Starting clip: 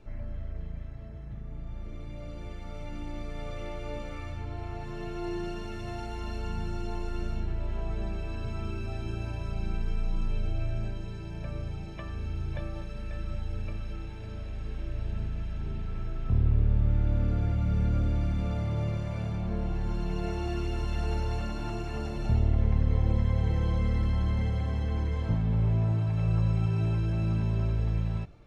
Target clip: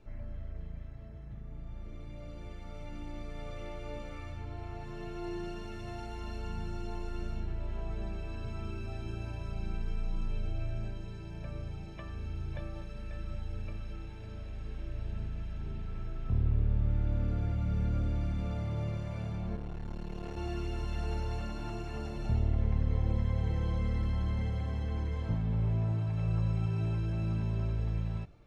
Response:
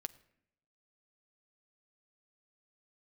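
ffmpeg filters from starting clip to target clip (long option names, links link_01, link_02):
-filter_complex "[0:a]asettb=1/sr,asplit=3[link_01][link_02][link_03];[link_01]atrim=end=19.564[link_04];[link_02]atrim=start=19.56:end=20.37,asetpts=PTS-STARTPTS,afade=type=in:duration=0.004:curve=qsin,afade=type=out:start_time=0.806:duration=0.004:curve=qsin,aeval=exprs='(tanh(28.2*val(0)+0.75)-tanh(0.75))/28.2':channel_layout=same[link_05];[link_03]atrim=start=20.366[link_06];[link_04][link_05]acrossfade=duration=0.004:curve1=hsin:curve2=qsin[link_07];[link_07][link_06]acrossfade=duration=0.004:curve1=qsin:curve2=hsin,volume=-4.5dB"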